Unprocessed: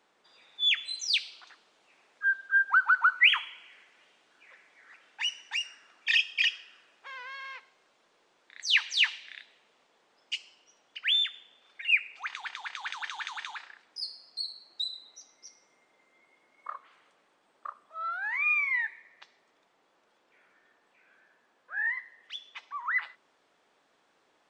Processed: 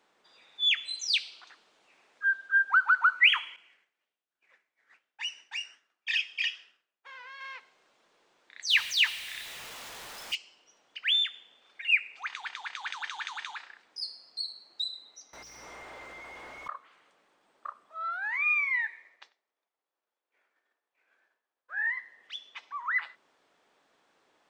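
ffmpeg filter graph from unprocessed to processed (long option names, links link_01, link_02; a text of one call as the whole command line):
ffmpeg -i in.wav -filter_complex "[0:a]asettb=1/sr,asplit=3[link_01][link_02][link_03];[link_01]atrim=end=3.564[link_04];[link_02]atrim=start=3.56:end=7.41,asetpts=PTS-STARTPTS,afade=type=in:duration=0.004:curve=qsin,afade=type=out:start_time=3.846:duration=0.004:curve=qsin,agate=range=-33dB:threshold=-51dB:ratio=3:release=100:detection=peak,flanger=delay=4.8:depth=9.4:regen=-67:speed=1.2:shape=sinusoidal[link_05];[link_03]atrim=start=7.406[link_06];[link_04][link_05]acrossfade=duration=0.004:curve1=hsin:curve2=qsin[link_07];[link_07][link_06]acrossfade=duration=0.004:curve1=qsin:curve2=hsin,asettb=1/sr,asplit=3[link_08][link_09][link_10];[link_08]atrim=end=8.704[link_11];[link_09]atrim=start=8.7:end=10.35,asetpts=PTS-STARTPTS,afade=type=in:duration=0.004:curve=qsin,afade=type=out:start_time=1.646:duration=0.004:curve=qsin,aeval=exprs='val(0)+0.5*0.0141*sgn(val(0))':channel_layout=same,equalizer=frequency=350:width_type=o:width=2.3:gain=-7.5[link_12];[link_10]atrim=start=10.346[link_13];[link_11][link_12]acrossfade=duration=0.004:curve1=hsin:curve2=qsin[link_14];[link_14][link_13]acrossfade=duration=0.004:curve1=qsin:curve2=hsin,asettb=1/sr,asplit=3[link_15][link_16][link_17];[link_15]atrim=end=15.334[link_18];[link_16]atrim=start=15.33:end=16.68,asetpts=PTS-STARTPTS,afade=type=in:duration=0.004:curve=qsin,afade=type=out:start_time=1.346:duration=0.004:curve=qsin,highshelf=frequency=7800:gain=11,asplit=2[link_19][link_20];[link_20]highpass=frequency=720:poles=1,volume=37dB,asoftclip=type=tanh:threshold=-32dB[link_21];[link_19][link_21]amix=inputs=2:normalize=0,lowpass=frequency=1200:poles=1,volume=-6dB,aeval=exprs='val(0)+0.000562*(sin(2*PI*60*n/s)+sin(2*PI*2*60*n/s)/2+sin(2*PI*3*60*n/s)/3+sin(2*PI*4*60*n/s)/4+sin(2*PI*5*60*n/s)/5)':channel_layout=same[link_22];[link_17]atrim=start=16.676[link_23];[link_18][link_22]acrossfade=duration=0.004:curve1=hsin:curve2=qsin[link_24];[link_24][link_23]acrossfade=duration=0.004:curve1=qsin:curve2=hsin,asettb=1/sr,asplit=3[link_25][link_26][link_27];[link_25]atrim=end=18.744[link_28];[link_26]atrim=start=18.74:end=21.9,asetpts=PTS-STARTPTS,afade=type=in:duration=0.004:curve=qsin,afade=type=out:start_time=3.156:duration=0.004:curve=qsin,highpass=330,agate=range=-33dB:threshold=-58dB:ratio=3:release=100:detection=peak,aecho=1:1:93:0.075,atrim=end_sample=139356[link_29];[link_27]atrim=start=21.896[link_30];[link_28][link_29]acrossfade=duration=0.004:curve1=hsin:curve2=qsin[link_31];[link_31][link_30]acrossfade=duration=0.004:curve1=qsin:curve2=hsin" out.wav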